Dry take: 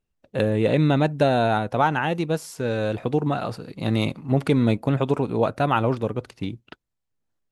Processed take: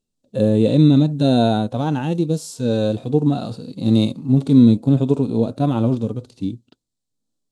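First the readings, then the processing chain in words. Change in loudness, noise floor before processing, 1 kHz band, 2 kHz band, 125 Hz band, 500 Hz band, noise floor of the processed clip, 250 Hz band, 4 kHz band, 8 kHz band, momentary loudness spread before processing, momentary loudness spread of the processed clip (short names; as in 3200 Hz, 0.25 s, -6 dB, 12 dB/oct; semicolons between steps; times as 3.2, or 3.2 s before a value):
+5.0 dB, -79 dBFS, -4.0 dB, -9.0 dB, +5.5 dB, +1.5 dB, -79 dBFS, +8.5 dB, +3.5 dB, n/a, 11 LU, 13 LU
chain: graphic EQ 125/250/500/2000/4000/8000 Hz +4/+10/+4/-10/+11/+12 dB; harmonic-percussive split percussive -16 dB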